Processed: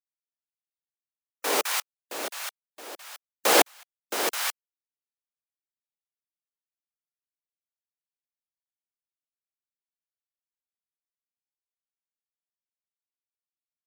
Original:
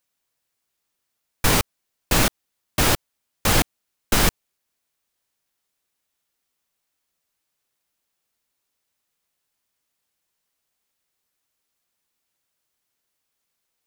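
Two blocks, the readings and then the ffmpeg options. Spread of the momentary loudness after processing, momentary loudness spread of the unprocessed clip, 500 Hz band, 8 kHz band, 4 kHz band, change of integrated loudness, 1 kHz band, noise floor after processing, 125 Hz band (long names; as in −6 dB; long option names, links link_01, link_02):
22 LU, 6 LU, −1.0 dB, −4.5 dB, −4.5 dB, −4.5 dB, −2.5 dB, below −85 dBFS, below −30 dB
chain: -filter_complex "[0:a]highpass=frequency=390:width=0.5412,highpass=frequency=390:width=1.3066,afftfilt=real='re*gte(hypot(re,im),0.0126)':imag='im*gte(hypot(re,im),0.0126)':win_size=1024:overlap=0.75,acrossover=split=720[link_01][link_02];[link_01]acontrast=75[link_03];[link_02]aecho=1:1:211:0.447[link_04];[link_03][link_04]amix=inputs=2:normalize=0,aeval=exprs='val(0)*pow(10,-31*if(lt(mod(-1.1*n/s,1),2*abs(-1.1)/1000),1-mod(-1.1*n/s,1)/(2*abs(-1.1)/1000),(mod(-1.1*n/s,1)-2*abs(-1.1)/1000)/(1-2*abs(-1.1)/1000))/20)':channel_layout=same,volume=2.5dB"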